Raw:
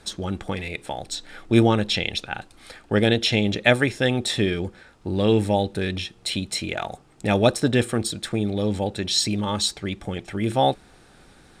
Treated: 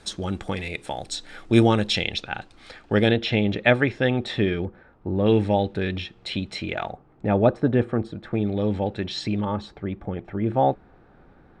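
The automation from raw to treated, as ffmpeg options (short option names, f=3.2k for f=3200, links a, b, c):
-af "asetnsamples=n=441:p=0,asendcmd='2.03 lowpass f 5300;3.11 lowpass f 2700;4.65 lowpass f 1300;5.26 lowpass f 3200;6.92 lowpass f 1300;8.33 lowpass f 2500;9.45 lowpass f 1300',lowpass=10k"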